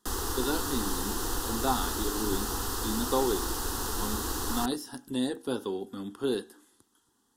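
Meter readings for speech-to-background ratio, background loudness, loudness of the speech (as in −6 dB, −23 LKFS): −2.0 dB, −32.0 LKFS, −34.0 LKFS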